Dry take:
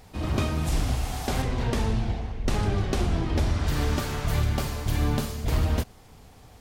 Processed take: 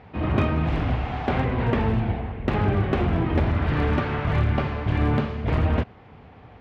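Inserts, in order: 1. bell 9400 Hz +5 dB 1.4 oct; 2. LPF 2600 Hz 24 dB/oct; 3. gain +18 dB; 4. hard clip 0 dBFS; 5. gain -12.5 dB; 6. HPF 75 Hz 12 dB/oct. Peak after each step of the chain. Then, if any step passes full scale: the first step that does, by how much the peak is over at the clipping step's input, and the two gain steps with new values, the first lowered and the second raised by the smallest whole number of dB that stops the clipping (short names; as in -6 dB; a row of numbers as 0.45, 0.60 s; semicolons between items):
-13.0, -14.0, +4.0, 0.0, -12.5, -8.5 dBFS; step 3, 4.0 dB; step 3 +14 dB, step 5 -8.5 dB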